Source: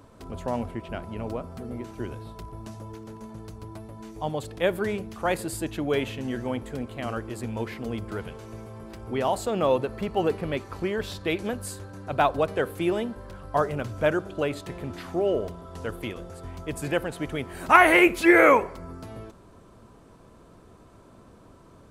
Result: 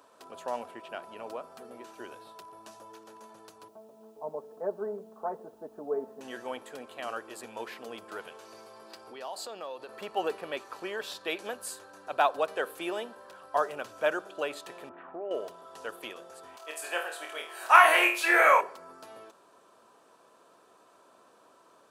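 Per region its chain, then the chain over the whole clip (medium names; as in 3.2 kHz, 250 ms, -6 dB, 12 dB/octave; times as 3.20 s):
3.68–6.21 s: Gaussian low-pass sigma 9.6 samples + comb 4.6 ms, depth 75% + word length cut 12-bit, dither triangular
8.45–9.89 s: peaking EQ 4.6 kHz +10.5 dB 0.37 oct + compression 4:1, threshold -33 dBFS
14.89–15.31 s: Gaussian low-pass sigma 4.8 samples + compression, threshold -26 dBFS
16.56–18.61 s: high-pass 600 Hz + flutter echo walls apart 4.4 m, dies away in 0.37 s
whole clip: high-pass 580 Hz 12 dB/octave; band-stop 2.1 kHz, Q 8.2; trim -1.5 dB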